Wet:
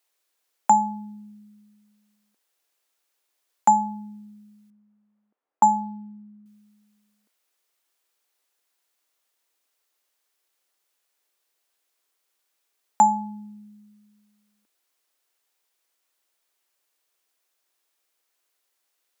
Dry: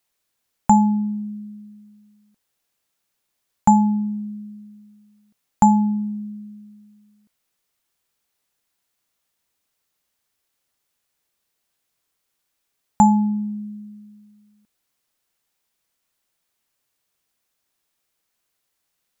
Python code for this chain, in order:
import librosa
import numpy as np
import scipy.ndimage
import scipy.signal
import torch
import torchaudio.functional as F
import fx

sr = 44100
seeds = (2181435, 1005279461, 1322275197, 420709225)

y = scipy.signal.sosfilt(scipy.signal.butter(4, 320.0, 'highpass', fs=sr, output='sos'), x)
y = fx.env_lowpass(y, sr, base_hz=1100.0, full_db=-14.5, at=(4.7, 6.46))